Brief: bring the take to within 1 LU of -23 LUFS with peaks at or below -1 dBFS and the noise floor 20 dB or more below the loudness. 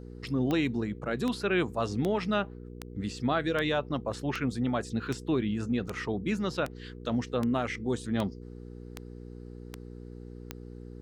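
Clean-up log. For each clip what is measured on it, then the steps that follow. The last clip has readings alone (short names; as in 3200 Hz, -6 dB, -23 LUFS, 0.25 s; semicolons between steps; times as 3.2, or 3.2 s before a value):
clicks 14; hum 60 Hz; harmonics up to 480 Hz; hum level -42 dBFS; loudness -31.0 LUFS; peak -14.5 dBFS; loudness target -23.0 LUFS
-> de-click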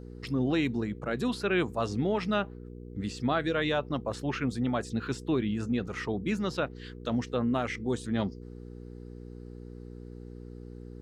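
clicks 0; hum 60 Hz; harmonics up to 480 Hz; hum level -42 dBFS
-> de-hum 60 Hz, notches 8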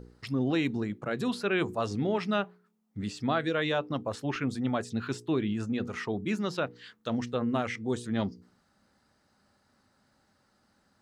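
hum none; loudness -31.5 LUFS; peak -15.0 dBFS; loudness target -23.0 LUFS
-> gain +8.5 dB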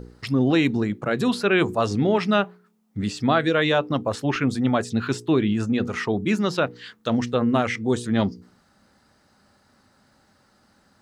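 loudness -23.0 LUFS; peak -6.5 dBFS; noise floor -62 dBFS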